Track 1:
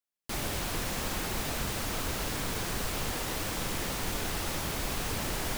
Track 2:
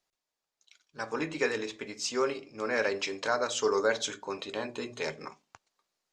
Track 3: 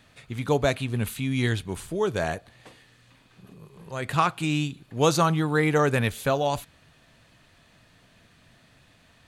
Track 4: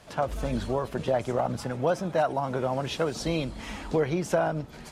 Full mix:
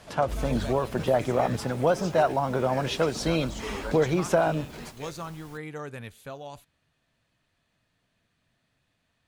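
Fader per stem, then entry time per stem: −19.5, −11.0, −16.0, +2.5 decibels; 0.00, 0.00, 0.00, 0.00 seconds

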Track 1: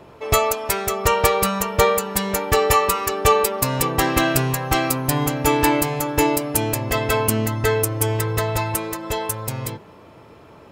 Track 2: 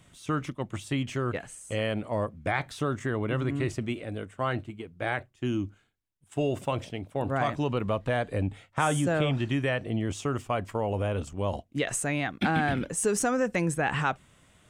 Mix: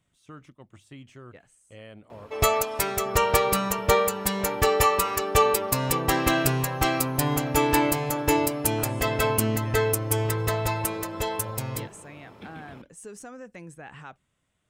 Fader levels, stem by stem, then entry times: −4.0, −16.0 decibels; 2.10, 0.00 seconds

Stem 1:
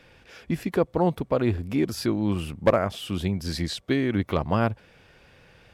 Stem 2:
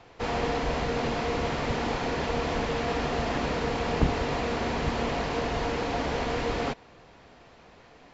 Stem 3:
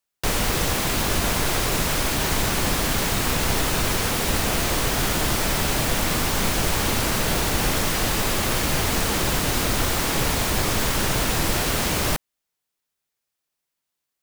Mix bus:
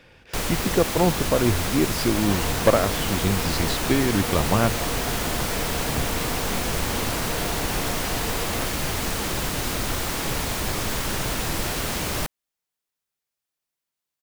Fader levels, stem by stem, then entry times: +2.0, −4.5, −4.0 decibels; 0.00, 1.95, 0.10 seconds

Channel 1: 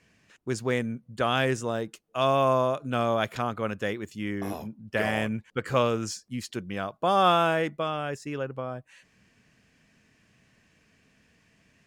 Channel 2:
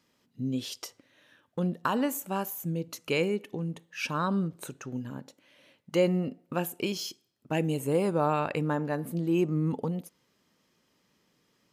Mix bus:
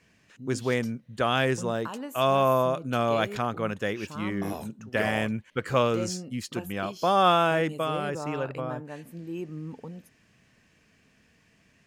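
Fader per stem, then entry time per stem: +0.5, −9.5 decibels; 0.00, 0.00 seconds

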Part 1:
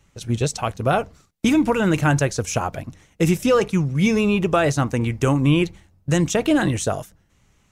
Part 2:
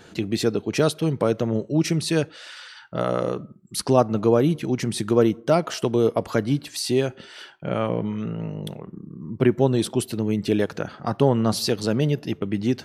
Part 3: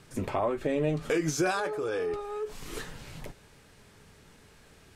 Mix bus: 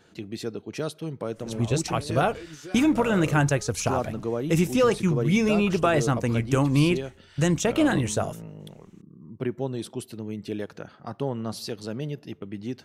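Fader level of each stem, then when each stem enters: −3.5, −10.5, −14.0 decibels; 1.30, 0.00, 1.25 seconds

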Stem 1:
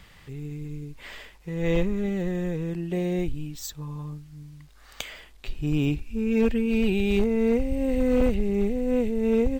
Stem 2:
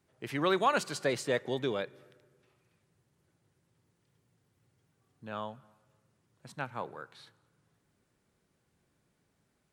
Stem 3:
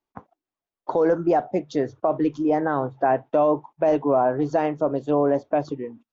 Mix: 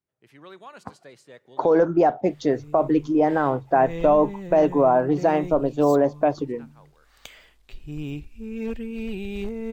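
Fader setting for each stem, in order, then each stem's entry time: −8.0, −16.5, +2.0 decibels; 2.25, 0.00, 0.70 seconds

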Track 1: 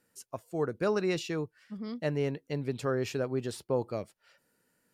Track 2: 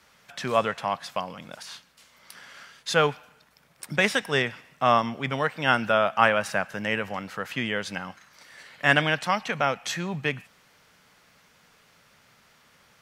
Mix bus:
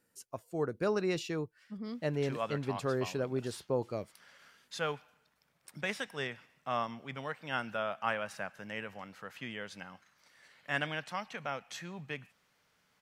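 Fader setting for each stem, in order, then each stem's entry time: −2.5, −13.5 decibels; 0.00, 1.85 seconds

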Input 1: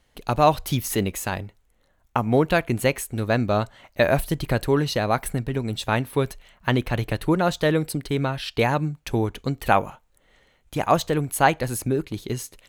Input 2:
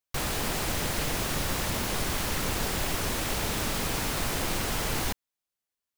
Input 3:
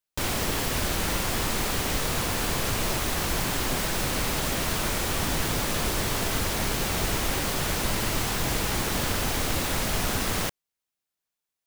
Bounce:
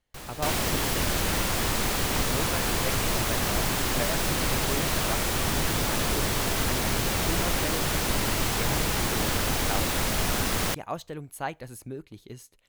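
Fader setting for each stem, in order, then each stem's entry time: −14.5, −11.0, +0.5 decibels; 0.00, 0.00, 0.25 seconds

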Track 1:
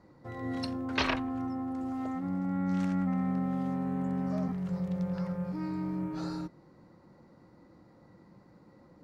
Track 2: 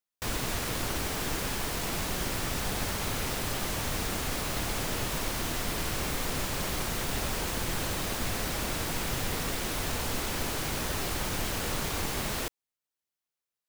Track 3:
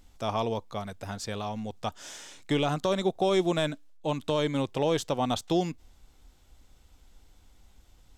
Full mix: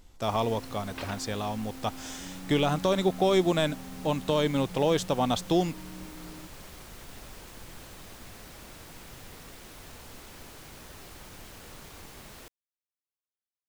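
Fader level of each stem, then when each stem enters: −11.0, −15.0, +1.5 decibels; 0.00, 0.00, 0.00 seconds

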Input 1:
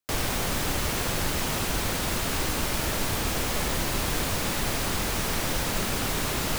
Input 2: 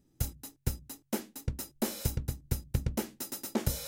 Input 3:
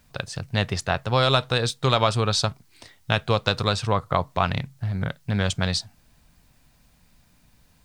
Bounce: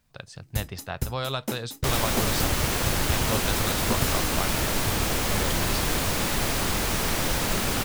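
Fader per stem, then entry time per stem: +2.0, +2.5, −10.0 decibels; 1.75, 0.35, 0.00 seconds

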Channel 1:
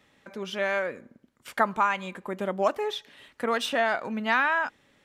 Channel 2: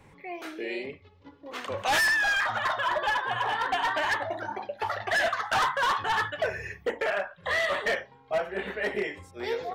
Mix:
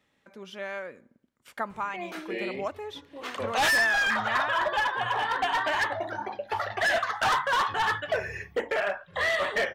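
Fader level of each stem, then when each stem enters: −8.5, +0.5 decibels; 0.00, 1.70 seconds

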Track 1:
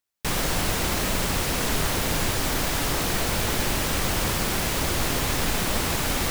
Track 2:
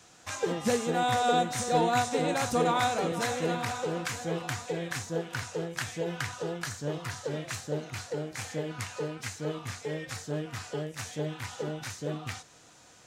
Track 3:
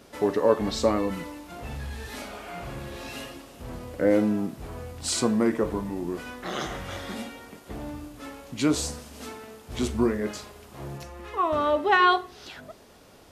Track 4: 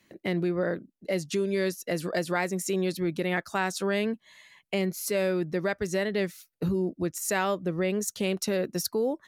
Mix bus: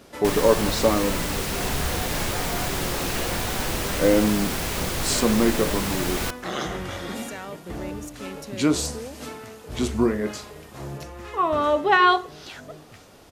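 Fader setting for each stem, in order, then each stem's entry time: −2.5, −12.0, +2.5, −10.5 decibels; 0.00, 0.65, 0.00, 0.00 seconds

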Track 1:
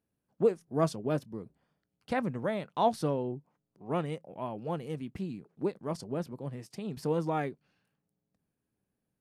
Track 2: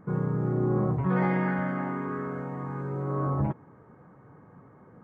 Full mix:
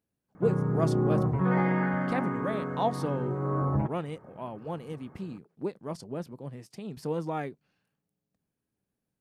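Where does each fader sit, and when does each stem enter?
−1.5, 0.0 decibels; 0.00, 0.35 seconds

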